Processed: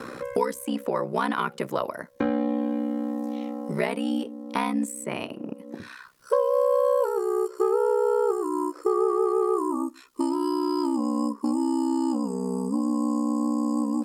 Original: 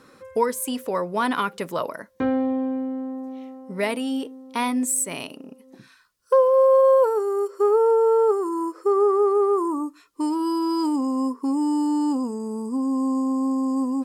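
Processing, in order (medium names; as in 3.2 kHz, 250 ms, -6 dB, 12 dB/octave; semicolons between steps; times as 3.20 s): ring modulator 32 Hz; three bands compressed up and down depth 70%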